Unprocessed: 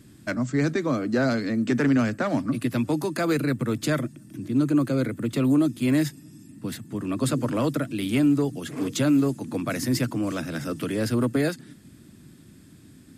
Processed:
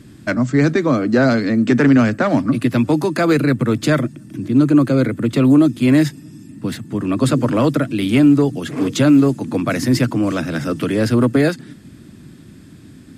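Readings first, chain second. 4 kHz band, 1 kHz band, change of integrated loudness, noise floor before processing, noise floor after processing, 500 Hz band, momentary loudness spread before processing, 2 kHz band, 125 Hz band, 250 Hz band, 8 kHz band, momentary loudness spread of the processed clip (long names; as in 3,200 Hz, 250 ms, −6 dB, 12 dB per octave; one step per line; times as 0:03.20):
+7.0 dB, +9.0 dB, +9.0 dB, −50 dBFS, −41 dBFS, +9.0 dB, 9 LU, +8.5 dB, +9.0 dB, +9.0 dB, +4.0 dB, 9 LU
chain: high-shelf EQ 7,300 Hz −10 dB
level +9 dB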